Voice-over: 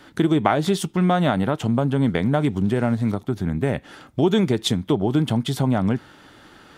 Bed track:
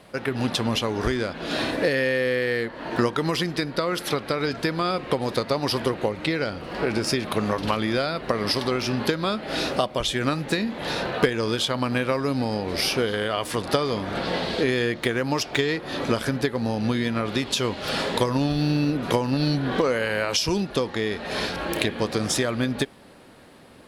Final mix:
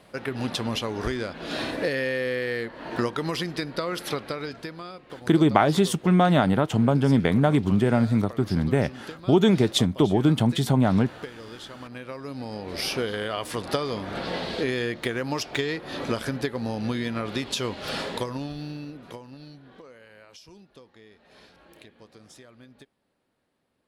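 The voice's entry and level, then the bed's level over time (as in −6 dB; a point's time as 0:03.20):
5.10 s, 0.0 dB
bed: 0:04.19 −4 dB
0:05.03 −17.5 dB
0:11.75 −17.5 dB
0:12.92 −4 dB
0:17.93 −4 dB
0:19.75 −26 dB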